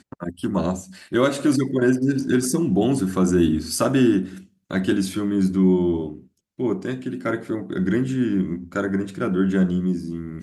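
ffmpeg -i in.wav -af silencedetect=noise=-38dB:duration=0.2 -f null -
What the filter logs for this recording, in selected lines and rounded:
silence_start: 4.43
silence_end: 4.71 | silence_duration: 0.28
silence_start: 6.20
silence_end: 6.59 | silence_duration: 0.40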